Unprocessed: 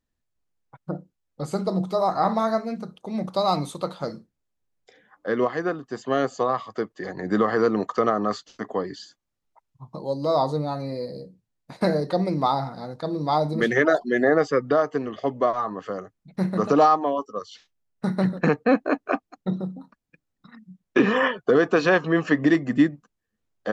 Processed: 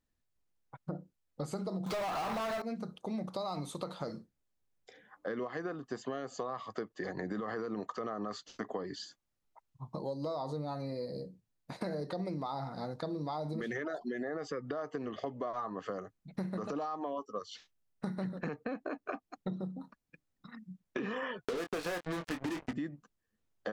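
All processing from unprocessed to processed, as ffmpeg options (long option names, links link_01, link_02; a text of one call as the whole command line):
ffmpeg -i in.wav -filter_complex "[0:a]asettb=1/sr,asplit=3[link_01][link_02][link_03];[link_01]atrim=end=1.864[link_04];[link_02]atrim=start=1.86:end=2.62,asetpts=PTS-STARTPTS,afade=type=in:duration=0.004:curve=qsin,afade=type=out:start_time=0.756:duration=0.004:curve=qsin,acompressor=threshold=-29dB:ratio=2:attack=3.2:release=140:knee=1:detection=peak,asplit=2[link_05][link_06];[link_06]highpass=frequency=720:poles=1,volume=28dB,asoftclip=type=tanh:threshold=-17dB[link_07];[link_05][link_07]amix=inputs=2:normalize=0,lowpass=frequency=4200:poles=1,volume=-6dB,acrusher=bits=5:mode=log:mix=0:aa=0.000001[link_08];[link_03]atrim=start=2.616[link_09];[link_04][link_08]acrossfade=duration=0.004:curve1=hsin:curve2=qsin[link_10];[link_10][link_09]acrossfade=duration=0.004:curve1=qsin:curve2=hsin,asettb=1/sr,asplit=3[link_11][link_12][link_13];[link_11]atrim=end=21.454[link_14];[link_12]atrim=start=21.45:end=22.73,asetpts=PTS-STARTPTS,afade=type=in:duration=0.004:curve=qsin,afade=type=out:start_time=1.276:duration=0.004:curve=qsin,acrusher=bits=3:mix=0:aa=0.5,asoftclip=type=hard:threshold=-17dB,asplit=2[link_15][link_16];[link_16]adelay=23,volume=-8dB[link_17];[link_15][link_17]amix=inputs=2:normalize=0,atrim=end_sample=56448[link_18];[link_13]atrim=start=22.726[link_19];[link_14][link_18]acrossfade=duration=0.004:curve1=hsin:curve2=qsin[link_20];[link_20][link_19]acrossfade=duration=0.004:curve1=qsin:curve2=hsin,alimiter=limit=-17.5dB:level=0:latency=1:release=60,acompressor=threshold=-32dB:ratio=6,volume=-2.5dB" out.wav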